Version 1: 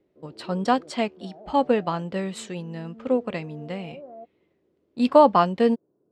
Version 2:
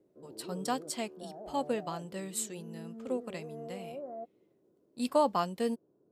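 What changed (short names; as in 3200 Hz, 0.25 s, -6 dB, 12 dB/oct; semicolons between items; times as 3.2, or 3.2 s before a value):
speech -12.0 dB; master: remove LPF 3100 Hz 12 dB/oct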